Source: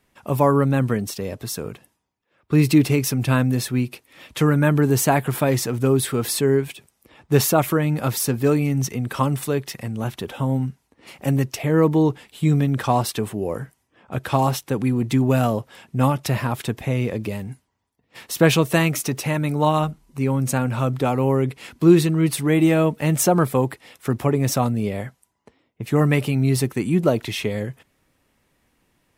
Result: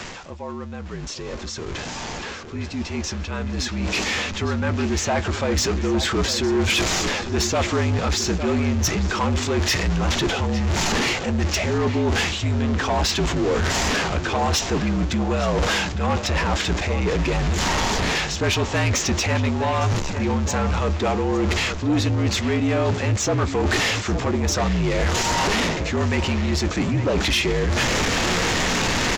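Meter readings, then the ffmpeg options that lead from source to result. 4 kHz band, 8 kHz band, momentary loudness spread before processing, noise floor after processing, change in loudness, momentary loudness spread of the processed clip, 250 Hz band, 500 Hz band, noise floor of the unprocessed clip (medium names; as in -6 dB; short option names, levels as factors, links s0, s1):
+9.0 dB, +3.0 dB, 12 LU, -32 dBFS, -1.0 dB, 8 LU, -3.0 dB, -2.0 dB, -70 dBFS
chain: -filter_complex "[0:a]aeval=exprs='val(0)+0.5*0.0473*sgn(val(0))':c=same,areverse,acompressor=threshold=0.0355:ratio=10,areverse,lowshelf=f=370:g=-4,asplit=2[s0][s1];[s1]adelay=858,lowpass=f=3700:p=1,volume=0.251,asplit=2[s2][s3];[s3]adelay=858,lowpass=f=3700:p=1,volume=0.53,asplit=2[s4][s5];[s5]adelay=858,lowpass=f=3700:p=1,volume=0.53,asplit=2[s6][s7];[s7]adelay=858,lowpass=f=3700:p=1,volume=0.53,asplit=2[s8][s9];[s9]adelay=858,lowpass=f=3700:p=1,volume=0.53,asplit=2[s10][s11];[s11]adelay=858,lowpass=f=3700:p=1,volume=0.53[s12];[s2][s4][s6][s8][s10][s12]amix=inputs=6:normalize=0[s13];[s0][s13]amix=inputs=2:normalize=0,dynaudnorm=f=260:g=31:m=5.01,afreqshift=-50,aresample=16000,aresample=44100,asplit=2[s14][s15];[s15]adelay=17,volume=0.211[s16];[s14][s16]amix=inputs=2:normalize=0,asoftclip=type=tanh:threshold=0.141,volume=1.26"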